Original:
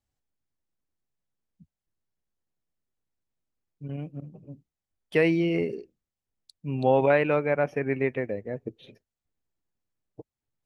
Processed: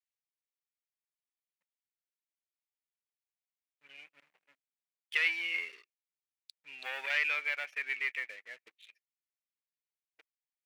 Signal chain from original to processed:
leveller curve on the samples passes 2
high-pass with resonance 2,200 Hz, resonance Q 2.7
level −9 dB

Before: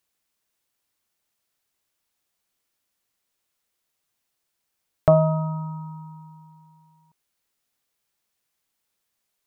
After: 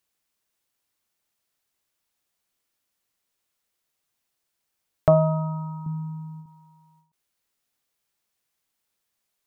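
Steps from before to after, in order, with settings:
0:05.86–0:06.46: low shelf with overshoot 450 Hz +8.5 dB, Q 1.5
every ending faded ahead of time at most 130 dB per second
level −1 dB

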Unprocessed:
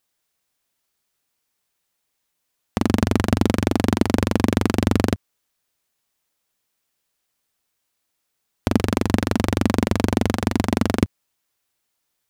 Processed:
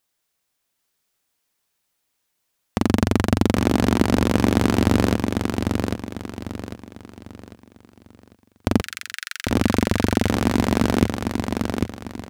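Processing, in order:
0:08.81–0:09.50: Butterworth high-pass 1,400 Hz 72 dB per octave
on a send: repeating echo 798 ms, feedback 36%, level −4.5 dB

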